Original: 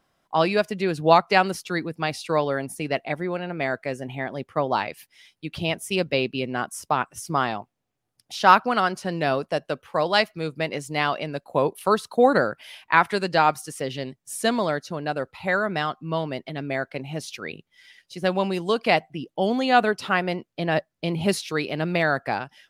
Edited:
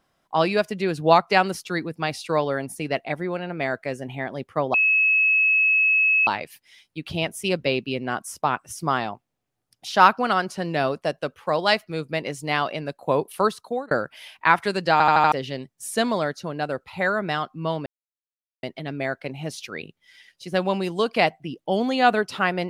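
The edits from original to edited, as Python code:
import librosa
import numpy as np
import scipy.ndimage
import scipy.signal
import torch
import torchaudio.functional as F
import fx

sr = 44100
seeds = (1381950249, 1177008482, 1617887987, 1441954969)

y = fx.edit(x, sr, fx.insert_tone(at_s=4.74, length_s=1.53, hz=2580.0, db=-15.5),
    fx.fade_out_span(start_s=11.88, length_s=0.5),
    fx.stutter_over(start_s=13.39, slice_s=0.08, count=5),
    fx.insert_silence(at_s=16.33, length_s=0.77), tone=tone)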